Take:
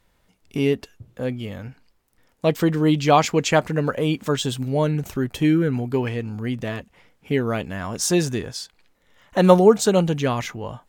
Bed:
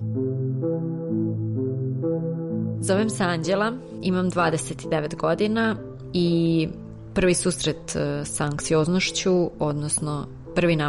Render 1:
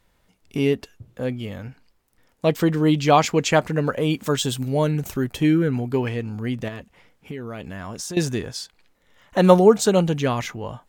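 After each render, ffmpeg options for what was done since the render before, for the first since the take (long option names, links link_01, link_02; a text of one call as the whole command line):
ffmpeg -i in.wav -filter_complex "[0:a]asettb=1/sr,asplit=3[link_01][link_02][link_03];[link_01]atrim=end=4.104[link_04];[link_02]atrim=start=4.1:end=5.32,asetpts=PTS-STARTPTS,afade=type=in:duration=0.004:curve=qsin,afade=type=out:start_time=1.216:duration=0.004:curve=qsin,highshelf=frequency=6800:gain=6.5[link_05];[link_03]atrim=start=5.316[link_06];[link_04][link_05]acrossfade=duration=0.004:curve1=hsin:curve2=qsin[link_07];[link_07][link_06]acrossfade=duration=0.004:curve1=qsin:curve2=hsin,asettb=1/sr,asplit=3[link_08][link_09][link_10];[link_08]atrim=end=6.684[link_11];[link_09]atrim=start=6.68:end=8.17,asetpts=PTS-STARTPTS,afade=type=in:duration=0.004:curve=qsin,afade=type=out:start_time=1.486:duration=0.004:curve=qsin,acompressor=threshold=-29dB:ratio=6:attack=3.2:release=140:knee=1:detection=peak[link_12];[link_10]atrim=start=8.166[link_13];[link_11][link_12]acrossfade=duration=0.004:curve1=hsin:curve2=qsin[link_14];[link_14][link_13]acrossfade=duration=0.004:curve1=qsin:curve2=hsin" out.wav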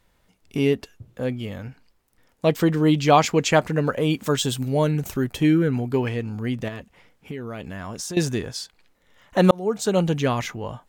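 ffmpeg -i in.wav -filter_complex "[0:a]asplit=2[link_01][link_02];[link_01]atrim=end=9.51,asetpts=PTS-STARTPTS,afade=type=out:start_time=9.506:duration=0.004:curve=hsin[link_03];[link_02]atrim=start=9.51,asetpts=PTS-STARTPTS,afade=type=in:duration=0.6[link_04];[link_03][link_04]concat=n=2:v=0:a=1" out.wav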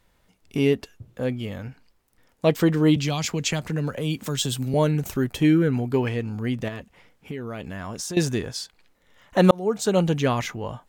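ffmpeg -i in.wav -filter_complex "[0:a]asettb=1/sr,asplit=3[link_01][link_02][link_03];[link_01]atrim=end=2.964[link_04];[link_02]atrim=start=2.96:end=4.74,asetpts=PTS-STARTPTS,afade=type=in:duration=0.004:curve=qsin,afade=type=out:start_time=1.776:duration=0.004:curve=qsin,acrossover=split=190|3000[link_05][link_06][link_07];[link_06]acompressor=threshold=-28dB:ratio=6:attack=3.2:release=140:knee=2.83:detection=peak[link_08];[link_05][link_08][link_07]amix=inputs=3:normalize=0[link_09];[link_03]atrim=start=4.736[link_10];[link_04][link_09]acrossfade=duration=0.004:curve1=hsin:curve2=qsin[link_11];[link_11][link_10]acrossfade=duration=0.004:curve1=qsin:curve2=hsin" out.wav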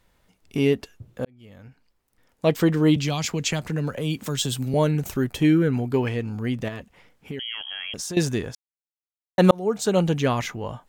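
ffmpeg -i in.wav -filter_complex "[0:a]asettb=1/sr,asplit=3[link_01][link_02][link_03];[link_01]atrim=end=7.394[link_04];[link_02]atrim=start=7.39:end=7.94,asetpts=PTS-STARTPTS,afade=type=in:duration=0.004:curve=qsin,afade=type=out:start_time=0.546:duration=0.004:curve=qsin,lowpass=frequency=2900:width_type=q:width=0.5098,lowpass=frequency=2900:width_type=q:width=0.6013,lowpass=frequency=2900:width_type=q:width=0.9,lowpass=frequency=2900:width_type=q:width=2.563,afreqshift=-3400[link_05];[link_03]atrim=start=7.936[link_06];[link_04][link_05]acrossfade=duration=0.004:curve1=hsin:curve2=qsin[link_07];[link_07][link_06]acrossfade=duration=0.004:curve1=qsin:curve2=hsin,asplit=4[link_08][link_09][link_10][link_11];[link_08]atrim=end=1.25,asetpts=PTS-STARTPTS,afade=type=out:start_time=1.246:duration=0.004:curve=hsin[link_12];[link_09]atrim=start=1.25:end=8.55,asetpts=PTS-STARTPTS,afade=type=in:duration=1.32,afade=type=out:start_time=7.296:duration=0.004:curve=hsin[link_13];[link_10]atrim=start=8.55:end=9.38,asetpts=PTS-STARTPTS,volume=0[link_14];[link_11]atrim=start=9.38,asetpts=PTS-STARTPTS,afade=type=in:duration=0.004:curve=hsin[link_15];[link_12][link_13][link_14][link_15]concat=n=4:v=0:a=1" out.wav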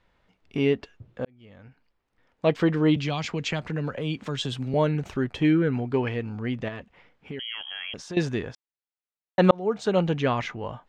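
ffmpeg -i in.wav -af "lowpass=3300,lowshelf=frequency=400:gain=-4" out.wav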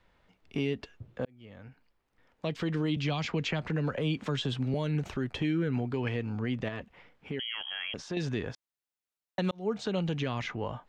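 ffmpeg -i in.wav -filter_complex "[0:a]acrossover=split=250|2300|5700[link_01][link_02][link_03][link_04];[link_01]acompressor=threshold=-26dB:ratio=4[link_05];[link_02]acompressor=threshold=-29dB:ratio=4[link_06];[link_03]acompressor=threshold=-37dB:ratio=4[link_07];[link_04]acompressor=threshold=-59dB:ratio=4[link_08];[link_05][link_06][link_07][link_08]amix=inputs=4:normalize=0,acrossover=split=3400[link_09][link_10];[link_09]alimiter=limit=-21.5dB:level=0:latency=1:release=146[link_11];[link_11][link_10]amix=inputs=2:normalize=0" out.wav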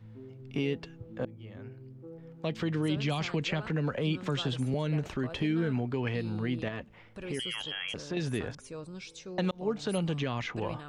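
ffmpeg -i in.wav -i bed.wav -filter_complex "[1:a]volume=-22dB[link_01];[0:a][link_01]amix=inputs=2:normalize=0" out.wav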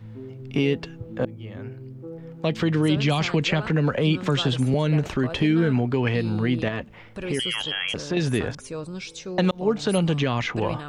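ffmpeg -i in.wav -af "volume=9dB" out.wav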